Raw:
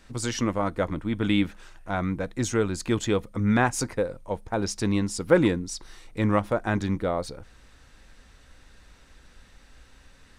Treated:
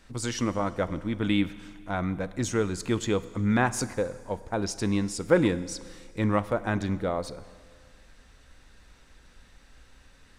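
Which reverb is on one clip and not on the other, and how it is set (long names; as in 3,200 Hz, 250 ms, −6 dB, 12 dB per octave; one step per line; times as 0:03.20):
four-comb reverb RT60 1.9 s, combs from 33 ms, DRR 15.5 dB
level −2 dB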